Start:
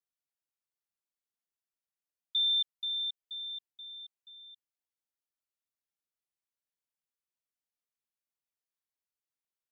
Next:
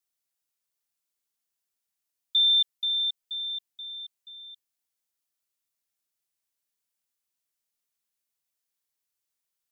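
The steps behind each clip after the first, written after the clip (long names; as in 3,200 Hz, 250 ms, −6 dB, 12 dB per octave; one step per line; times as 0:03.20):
high-shelf EQ 3,300 Hz +8.5 dB
level +2.5 dB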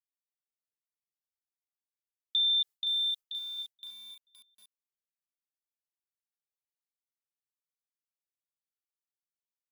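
noise gate with hold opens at −32 dBFS
comb filter 2.4 ms, depth 48%
feedback echo at a low word length 518 ms, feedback 35%, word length 9 bits, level −4.5 dB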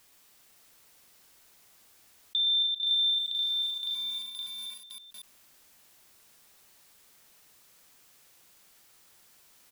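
on a send: multi-tap delay 42/119/175/318/560 ms −13/−4/−12/−11/−3.5 dB
on the sum: envelope flattener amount 50%
level −3.5 dB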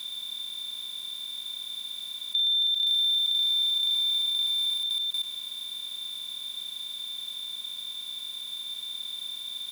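compressor on every frequency bin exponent 0.2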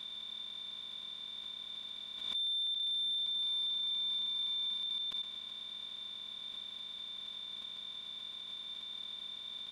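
gain into a clipping stage and back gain 24.5 dB
head-to-tape spacing loss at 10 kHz 24 dB
background raised ahead of every attack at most 49 dB per second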